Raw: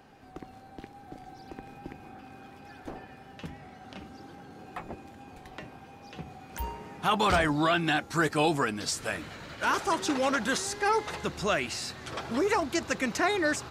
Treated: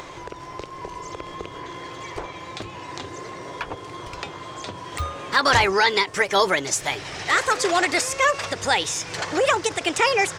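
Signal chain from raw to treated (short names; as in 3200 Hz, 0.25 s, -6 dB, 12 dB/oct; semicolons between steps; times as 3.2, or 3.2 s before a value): resonant high shelf 7600 Hz -11.5 dB, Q 1.5; wide varispeed 1.32×; in parallel at +2.5 dB: upward compressor, threshold -29 dBFS; on the sum: bell 220 Hz -14.5 dB 0.45 oct; ending taper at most 310 dB/s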